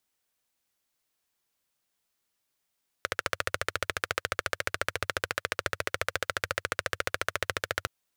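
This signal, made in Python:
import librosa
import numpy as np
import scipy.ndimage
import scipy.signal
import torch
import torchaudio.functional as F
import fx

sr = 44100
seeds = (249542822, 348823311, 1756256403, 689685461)

y = fx.engine_single(sr, seeds[0], length_s=4.82, rpm=1700, resonances_hz=(95.0, 530.0, 1400.0))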